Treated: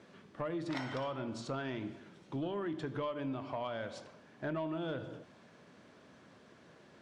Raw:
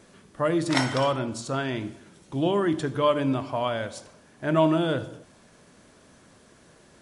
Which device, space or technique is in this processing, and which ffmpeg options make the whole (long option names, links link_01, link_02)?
AM radio: -af "highpass=110,lowpass=4000,acompressor=threshold=-30dB:ratio=8,asoftclip=type=tanh:threshold=-23.5dB,volume=-3.5dB"